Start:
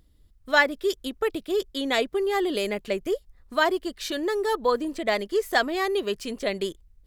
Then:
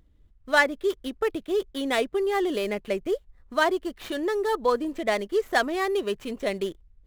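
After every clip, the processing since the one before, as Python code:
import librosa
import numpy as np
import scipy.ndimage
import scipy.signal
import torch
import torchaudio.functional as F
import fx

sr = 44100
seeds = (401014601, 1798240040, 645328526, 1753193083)

y = scipy.ndimage.median_filter(x, 9, mode='constant')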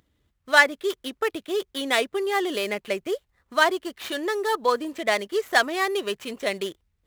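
y = scipy.signal.sosfilt(scipy.signal.butter(2, 80.0, 'highpass', fs=sr, output='sos'), x)
y = fx.tilt_shelf(y, sr, db=-5.0, hz=650.0)
y = y * librosa.db_to_amplitude(1.0)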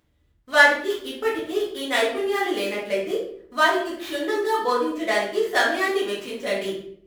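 y = fx.room_shoebox(x, sr, seeds[0], volume_m3=110.0, walls='mixed', distance_m=1.9)
y = y * librosa.db_to_amplitude(-7.0)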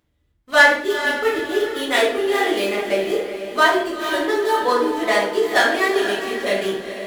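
y = fx.leveller(x, sr, passes=1)
y = fx.echo_diffused(y, sr, ms=452, feedback_pct=42, wet_db=-9)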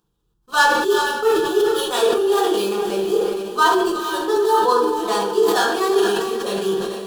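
y = fx.fixed_phaser(x, sr, hz=410.0, stages=8)
y = fx.sustainer(y, sr, db_per_s=37.0)
y = y * librosa.db_to_amplitude(2.5)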